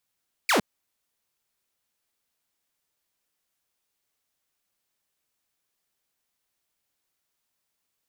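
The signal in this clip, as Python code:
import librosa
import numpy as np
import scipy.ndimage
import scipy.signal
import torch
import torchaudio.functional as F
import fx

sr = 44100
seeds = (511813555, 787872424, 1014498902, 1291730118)

y = fx.laser_zap(sr, level_db=-16, start_hz=2600.0, end_hz=170.0, length_s=0.11, wave='saw')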